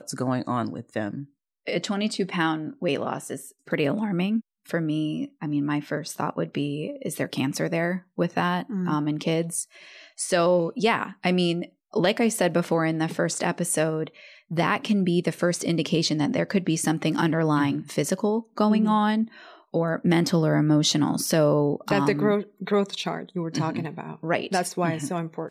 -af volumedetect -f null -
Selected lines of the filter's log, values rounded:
mean_volume: -25.0 dB
max_volume: -9.8 dB